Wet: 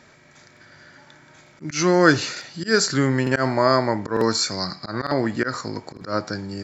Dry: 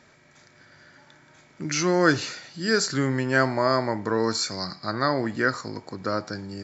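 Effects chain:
volume swells 110 ms
regular buffer underruns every 0.90 s, samples 2,048, repeat, from 0:00.52
level +4.5 dB

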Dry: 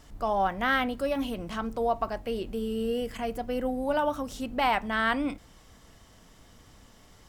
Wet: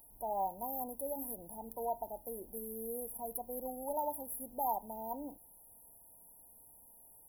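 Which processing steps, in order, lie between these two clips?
linear-phase brick-wall band-stop 1,000–10,000 Hz
first-order pre-emphasis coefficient 0.97
level +10.5 dB

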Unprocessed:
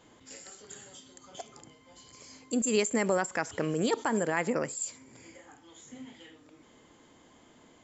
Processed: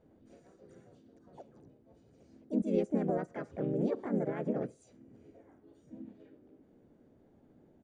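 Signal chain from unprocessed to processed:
moving average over 42 samples
pitch-shifted copies added −3 semitones −2 dB, +4 semitones −3 dB
level −4 dB

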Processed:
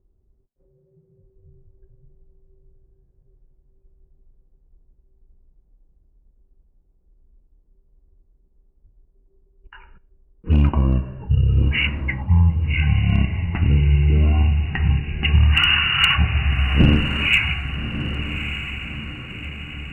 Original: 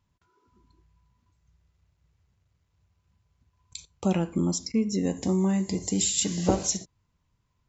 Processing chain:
change of speed 0.386×
low-pass that shuts in the quiet parts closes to 320 Hz, open at −23.5 dBFS
in parallel at −1 dB: downward compressor 8 to 1, threshold −36 dBFS, peak gain reduction 20 dB
on the sum: hard clipping −14 dBFS, distortion −25 dB
on a send: feedback delay with all-pass diffusion 1,210 ms, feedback 51%, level −9.5 dB
on the sum: level that may rise only so fast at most 480 dB per second
level +7 dB

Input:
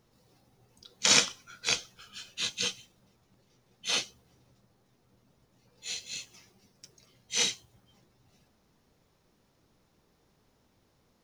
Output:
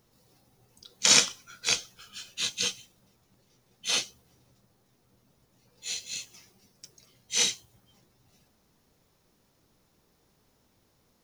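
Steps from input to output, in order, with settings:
high-shelf EQ 6,900 Hz +8.5 dB

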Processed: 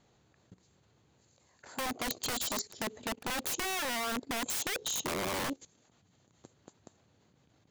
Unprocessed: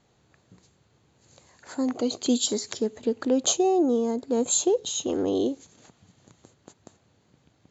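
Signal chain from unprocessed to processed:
wrap-around overflow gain 22.5 dB
output level in coarse steps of 17 dB

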